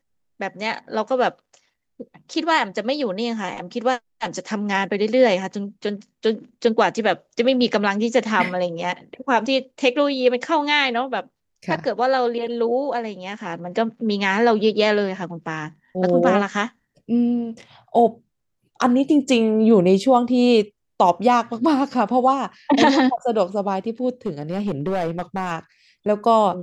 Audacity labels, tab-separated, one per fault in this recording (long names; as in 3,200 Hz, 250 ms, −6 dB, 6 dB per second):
24.260000	25.520000	clipping −18.5 dBFS